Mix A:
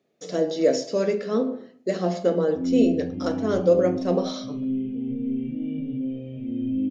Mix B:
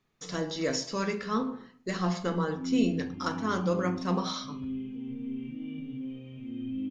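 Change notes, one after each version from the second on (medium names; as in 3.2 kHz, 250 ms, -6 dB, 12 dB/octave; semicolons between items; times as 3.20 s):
speech: remove high-pass 260 Hz 12 dB/octave; master: add resonant low shelf 780 Hz -8 dB, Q 3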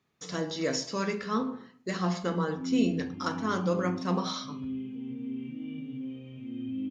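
master: add high-pass 71 Hz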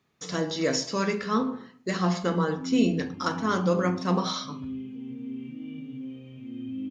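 speech +4.0 dB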